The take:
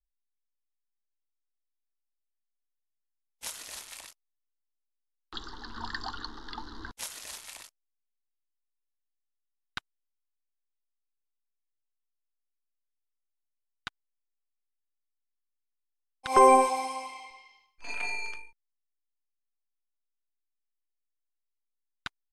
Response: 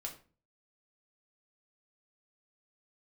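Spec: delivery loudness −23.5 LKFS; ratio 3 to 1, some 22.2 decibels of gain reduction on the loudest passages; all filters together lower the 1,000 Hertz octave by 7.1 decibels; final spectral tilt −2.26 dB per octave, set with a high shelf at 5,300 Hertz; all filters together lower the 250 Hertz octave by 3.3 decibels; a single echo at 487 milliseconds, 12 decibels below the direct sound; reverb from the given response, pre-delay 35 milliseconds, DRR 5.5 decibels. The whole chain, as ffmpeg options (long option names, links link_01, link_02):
-filter_complex "[0:a]equalizer=frequency=250:width_type=o:gain=-3.5,equalizer=frequency=1000:width_type=o:gain=-8.5,highshelf=frequency=5300:gain=6.5,acompressor=threshold=-50dB:ratio=3,aecho=1:1:487:0.251,asplit=2[link_01][link_02];[1:a]atrim=start_sample=2205,adelay=35[link_03];[link_02][link_03]afir=irnorm=-1:irlink=0,volume=-3.5dB[link_04];[link_01][link_04]amix=inputs=2:normalize=0,volume=26dB"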